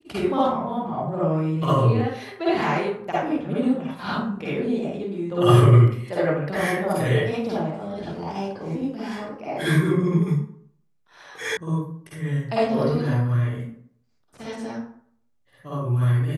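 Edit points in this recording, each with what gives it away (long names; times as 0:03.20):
0:11.57: cut off before it has died away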